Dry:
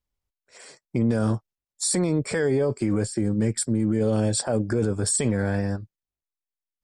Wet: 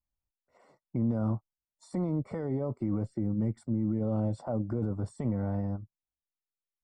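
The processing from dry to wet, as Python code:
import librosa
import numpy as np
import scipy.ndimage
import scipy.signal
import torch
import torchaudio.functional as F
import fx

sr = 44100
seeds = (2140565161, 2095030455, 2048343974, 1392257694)

y = scipy.signal.savgol_filter(x, 65, 4, mode='constant')
y = fx.peak_eq(y, sr, hz=430.0, db=-9.0, octaves=0.51)
y = y * librosa.db_to_amplitude(-5.5)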